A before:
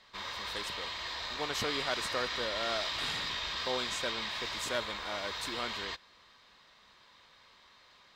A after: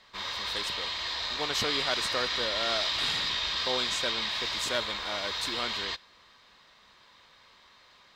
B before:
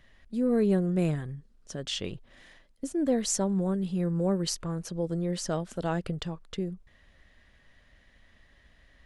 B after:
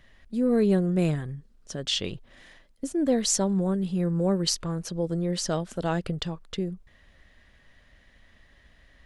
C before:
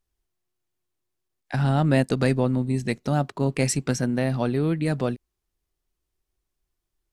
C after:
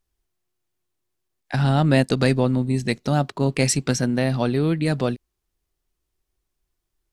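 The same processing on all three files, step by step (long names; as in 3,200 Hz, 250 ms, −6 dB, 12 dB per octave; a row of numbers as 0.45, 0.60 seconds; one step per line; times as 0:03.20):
dynamic equaliser 4,100 Hz, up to +5 dB, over −47 dBFS, Q 1.1
level +2.5 dB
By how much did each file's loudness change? +5.5, +3.0, +2.5 LU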